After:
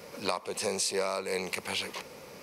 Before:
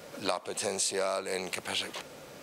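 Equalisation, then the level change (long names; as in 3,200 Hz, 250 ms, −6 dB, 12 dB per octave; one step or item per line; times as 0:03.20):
EQ curve with evenly spaced ripples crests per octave 0.85, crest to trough 6 dB
0.0 dB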